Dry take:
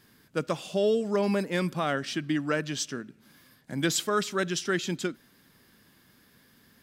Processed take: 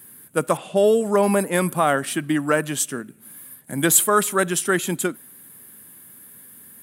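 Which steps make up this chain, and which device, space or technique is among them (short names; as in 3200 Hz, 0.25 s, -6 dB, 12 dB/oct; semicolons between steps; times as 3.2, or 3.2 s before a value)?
dynamic EQ 890 Hz, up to +7 dB, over -42 dBFS, Q 0.98; 0.57–1.54 low-pass opened by the level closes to 2500 Hz, open at -22.5 dBFS; budget condenser microphone (HPF 89 Hz; resonant high shelf 7300 Hz +13 dB, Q 3); gain +5.5 dB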